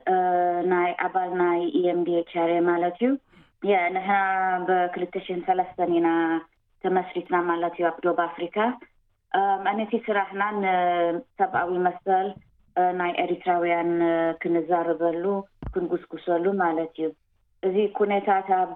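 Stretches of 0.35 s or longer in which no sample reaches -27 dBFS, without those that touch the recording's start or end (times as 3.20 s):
3.16–3.64 s
6.39–6.85 s
8.72–9.34 s
12.31–12.77 s
17.09–17.63 s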